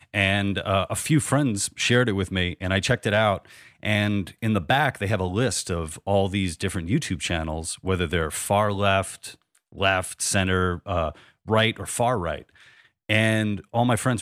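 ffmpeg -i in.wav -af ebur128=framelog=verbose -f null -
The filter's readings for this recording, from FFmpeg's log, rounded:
Integrated loudness:
  I:         -23.8 LUFS
  Threshold: -34.1 LUFS
Loudness range:
  LRA:         2.5 LU
  Threshold: -44.4 LUFS
  LRA low:   -25.5 LUFS
  LRA high:  -23.0 LUFS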